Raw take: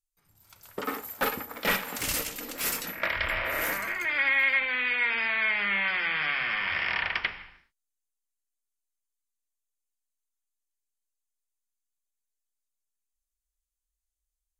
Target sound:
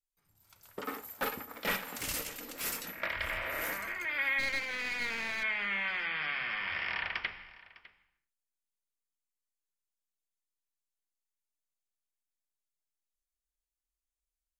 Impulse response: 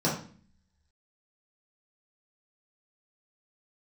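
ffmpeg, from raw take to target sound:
-filter_complex "[0:a]asplit=3[a][b][c];[a]afade=t=out:st=4.38:d=0.02[d];[b]aeval=exprs='clip(val(0),-1,0.0251)':c=same,afade=t=in:st=4.38:d=0.02,afade=t=out:st=5.42:d=0.02[e];[c]afade=t=in:st=5.42:d=0.02[f];[d][e][f]amix=inputs=3:normalize=0,asplit=2[g][h];[h]aecho=0:1:604:0.1[i];[g][i]amix=inputs=2:normalize=0,volume=-6.5dB"

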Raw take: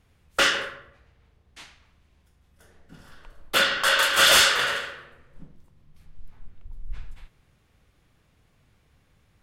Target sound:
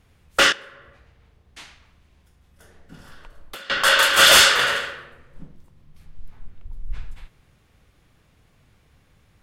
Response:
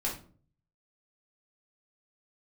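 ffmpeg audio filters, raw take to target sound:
-filter_complex "[0:a]asettb=1/sr,asplit=3[a][b][c];[a]atrim=end=0.524[d];[b]atrim=start=0.52:end=3.7,asetpts=PTS-STARTPTS,afade=t=in:d=0.004:c=qsin,afade=t=out:st=3.176:d=0.004:c=qsin,acompressor=threshold=-41dB:ratio=16[e];[c]atrim=start=3.696[f];[d][e]acrossfade=d=0.004:c1=hsin:c2=qsin[g];[g][f]acrossfade=d=0.004:c1=qsin:c2=hsin,volume=4.5dB"

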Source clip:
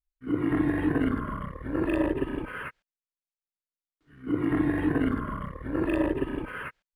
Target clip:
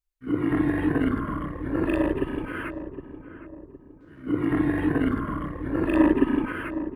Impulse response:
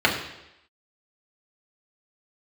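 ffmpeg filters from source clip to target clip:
-filter_complex "[0:a]asettb=1/sr,asplit=3[a][b][c];[a]atrim=end=5.954[d];[b]atrim=start=5.95:end=6.53,asetpts=PTS-STARTPTS,afade=t=in:d=0.004:c=qsin,afade=t=out:st=0.576:d=0.004:c=qsin,equalizer=f=125:t=o:w=1:g=-6,equalizer=f=250:t=o:w=1:g=12,equalizer=f=500:t=o:w=1:g=-4,equalizer=f=1k:t=o:w=1:g=6,equalizer=f=2k:t=o:w=1:g=3[e];[c]atrim=start=6.526[f];[d][e]acrossfade=d=0.004:c1=hsin:c2=qsin[g];[g][f]acrossfade=d=0.004:c1=qsin:c2=hsin,asplit=2[h][i];[i]adelay=763,lowpass=f=1k:p=1,volume=-11dB,asplit=2[j][k];[k]adelay=763,lowpass=f=1k:p=1,volume=0.44,asplit=2[l][m];[m]adelay=763,lowpass=f=1k:p=1,volume=0.44,asplit=2[n][o];[o]adelay=763,lowpass=f=1k:p=1,volume=0.44,asplit=2[p][q];[q]adelay=763,lowpass=f=1k:p=1,volume=0.44[r];[j][l][n][p][r]amix=inputs=5:normalize=0[s];[h][s]amix=inputs=2:normalize=0,volume=2dB"

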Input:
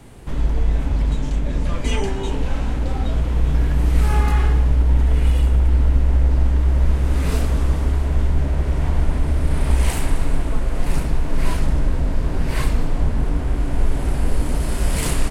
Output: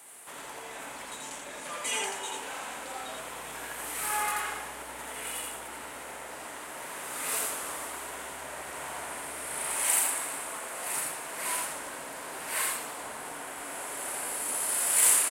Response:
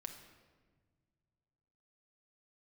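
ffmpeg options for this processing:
-af "highpass=880,highshelf=f=6.8k:t=q:w=1.5:g=9,aecho=1:1:84:0.708,volume=-2.5dB"

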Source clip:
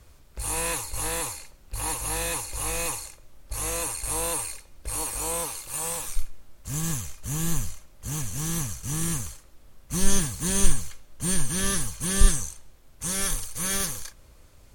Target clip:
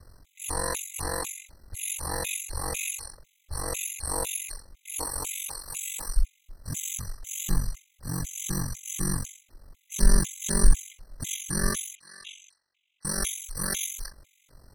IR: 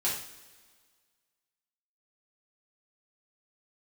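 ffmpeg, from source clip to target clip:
-filter_complex "[0:a]asoftclip=type=tanh:threshold=-6dB,asettb=1/sr,asplit=3[a][b][c];[a]atrim=end=11.954[d];[b]atrim=start=11.95:end=13.05,asetpts=PTS-STARTPTS,afade=t=in:d=0.004:c=qsin,afade=t=out:st=1.096:d=0.004:c=qsin,bandpass=f=2.8k:t=q:w=4:csg=0[e];[c]atrim=start=13.046[f];[d][e]acrossfade=d=0.004:c1=hsin:c2=qsin[g];[g][f]acrossfade=d=0.004:c1=qsin:c2=hsin,aeval=exprs='val(0)*sin(2*PI*23*n/s)':c=same,afftfilt=real='re*gt(sin(2*PI*2*pts/sr)*(1-2*mod(floor(b*sr/1024/2000),2)),0)':imag='im*gt(sin(2*PI*2*pts/sr)*(1-2*mod(floor(b*sr/1024/2000),2)),0)':win_size=1024:overlap=0.75,volume=3.5dB"

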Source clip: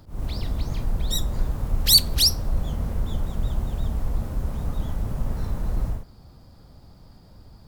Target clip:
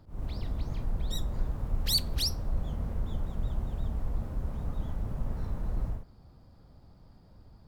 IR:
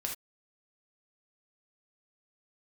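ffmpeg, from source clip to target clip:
-af "highshelf=f=3.6k:g=-9,volume=-6.5dB"

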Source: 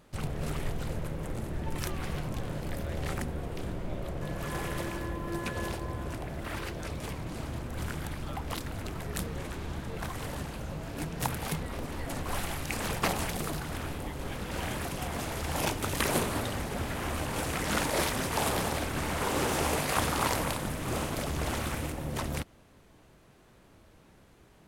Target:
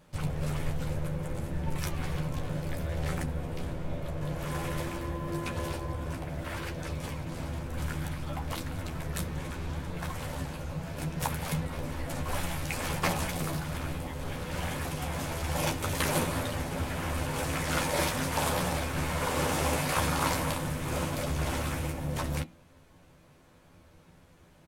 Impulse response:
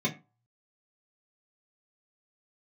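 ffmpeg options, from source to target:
-filter_complex "[0:a]asplit=2[a][b];[b]adelay=12,volume=-4.5dB[c];[a][c]amix=inputs=2:normalize=0,asplit=2[d][e];[1:a]atrim=start_sample=2205,asetrate=48510,aresample=44100[f];[e][f]afir=irnorm=-1:irlink=0,volume=-18dB[g];[d][g]amix=inputs=2:normalize=0,volume=-1dB"

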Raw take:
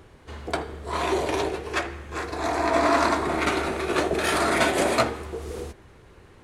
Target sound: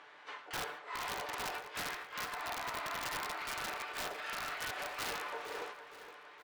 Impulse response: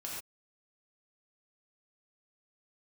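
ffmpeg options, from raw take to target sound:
-filter_complex "[0:a]highpass=1.1k,highshelf=f=12k:g=-2,aecho=1:1:6.8:0.7,areverse,acompressor=threshold=-39dB:ratio=20,areverse,flanger=delay=1.1:depth=6.7:regen=-74:speed=1.3:shape=sinusoidal,asplit=4[a][b][c][d];[b]asetrate=52444,aresample=44100,atempo=0.840896,volume=-18dB[e];[c]asetrate=55563,aresample=44100,atempo=0.793701,volume=-9dB[f];[d]asetrate=88200,aresample=44100,atempo=0.5,volume=-4dB[g];[a][e][f][g]amix=inputs=4:normalize=0,adynamicsmooth=sensitivity=1.5:basefreq=2.6k,aeval=exprs='(mod(100*val(0)+1,2)-1)/100':c=same,aecho=1:1:464|928|1392|1856:0.237|0.0972|0.0399|0.0163,asplit=2[h][i];[1:a]atrim=start_sample=2205[j];[i][j]afir=irnorm=-1:irlink=0,volume=-16dB[k];[h][k]amix=inputs=2:normalize=0,volume=7.5dB"

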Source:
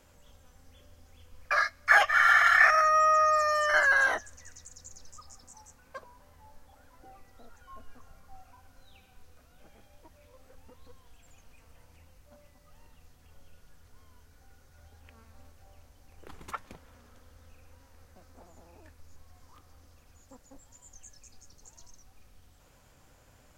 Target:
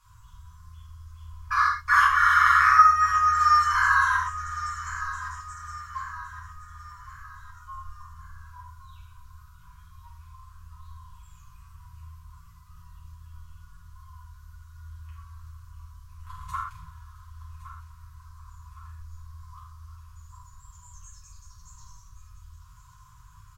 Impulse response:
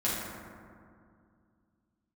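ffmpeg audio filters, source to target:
-filter_complex "[0:a]equalizer=f=250:t=o:w=1:g=-5,equalizer=f=500:t=o:w=1:g=5,equalizer=f=1k:t=o:w=1:g=12,equalizer=f=2k:t=o:w=1:g=-10,aecho=1:1:1114|2228|3342|4456:0.2|0.0878|0.0386|0.017,acrossover=split=210[a][b];[a]acontrast=39[c];[c][b]amix=inputs=2:normalize=0[d];[1:a]atrim=start_sample=2205,atrim=end_sample=6174[e];[d][e]afir=irnorm=-1:irlink=0,afftfilt=real='re*(1-between(b*sr/4096,170,940))':imag='im*(1-between(b*sr/4096,170,940))':win_size=4096:overlap=0.75,volume=-4dB"

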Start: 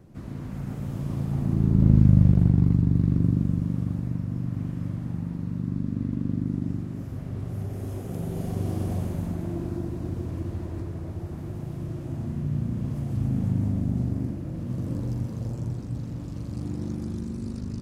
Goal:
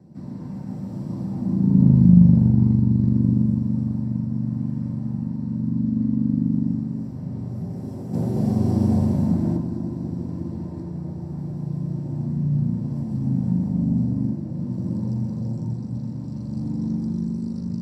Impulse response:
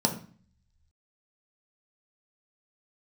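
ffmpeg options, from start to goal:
-filter_complex "[0:a]asettb=1/sr,asplit=3[a][b][c];[a]atrim=end=8.134[d];[b]atrim=start=8.13:end=9.57,asetpts=PTS-STARTPTS,afade=t=in:d=0.004:c=qsin,afade=t=out:st=1.436:d=0.004:c=qsin,acontrast=58[e];[c]atrim=start=9.566[f];[d][e]acrossfade=d=0.004:c1=hsin:c2=qsin[g];[g][f]acrossfade=d=0.004:c1=qsin:c2=hsin[h];[1:a]atrim=start_sample=2205,atrim=end_sample=3528[i];[h][i]afir=irnorm=-1:irlink=0,volume=-13.5dB"

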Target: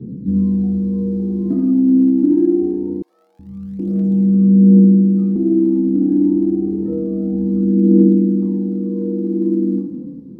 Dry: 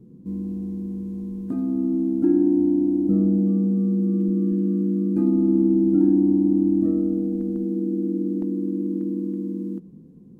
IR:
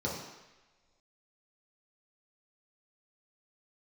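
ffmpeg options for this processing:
-filter_complex "[0:a]alimiter=limit=-18dB:level=0:latency=1:release=16,acompressor=threshold=-27dB:ratio=6[a];[1:a]atrim=start_sample=2205,asetrate=40572,aresample=44100[b];[a][b]afir=irnorm=-1:irlink=0,aphaser=in_gain=1:out_gain=1:delay=3.9:decay=0.59:speed=0.25:type=triangular,asettb=1/sr,asplit=3[c][d][e];[c]atrim=end=3.024[f];[d]atrim=start=3.02:end=5.36,asetpts=PTS-STARTPTS,afade=t=in:d=0.004:c=qsin,afade=t=out:st=2.336:d=0.004:c=qsin,acrossover=split=150|1000[g][h][i];[g]adelay=370[j];[h]adelay=770[k];[j][k][i]amix=inputs=3:normalize=0,atrim=end_sample=103194[l];[e]atrim=start=5.356[m];[f][l]acrossfade=d=0.004:c1=hsin:c2=qsin[n];[n][m]acrossfade=d=0.004:c1=qsin:c2=hsin,volume=-1dB"

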